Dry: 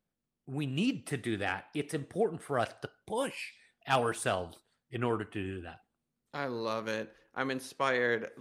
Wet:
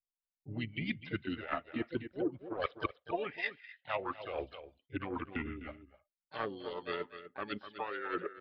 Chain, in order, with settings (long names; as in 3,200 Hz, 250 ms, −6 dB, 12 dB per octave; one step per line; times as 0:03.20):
spectral dynamics exaggerated over time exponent 1.5
in parallel at 0 dB: brickwall limiter −26.5 dBFS, peak gain reduction 10.5 dB
on the sum: low-shelf EQ 400 Hz −12 dB
pitch shifter −4 semitones
reversed playback
downward compressor 16 to 1, threshold −41 dBFS, peak gain reduction 19.5 dB
reversed playback
transient designer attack +10 dB, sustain −2 dB
single-tap delay 251 ms −12 dB
low-pass that shuts in the quiet parts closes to 1,600 Hz, open at −37 dBFS
rotating-speaker cabinet horn 6.3 Hz, later 1 Hz, at 0:05.66
downsampling to 8,000 Hz
pitch-shifted copies added +5 semitones −8 dB
level +5 dB